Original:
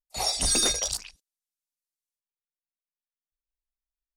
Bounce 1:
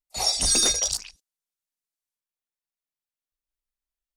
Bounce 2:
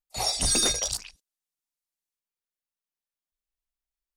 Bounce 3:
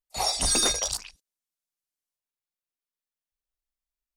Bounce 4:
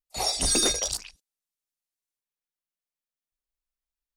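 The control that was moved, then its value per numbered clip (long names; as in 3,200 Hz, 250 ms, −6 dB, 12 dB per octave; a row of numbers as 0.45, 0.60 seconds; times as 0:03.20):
dynamic equaliser, frequency: 5,900, 120, 1,000, 350 Hertz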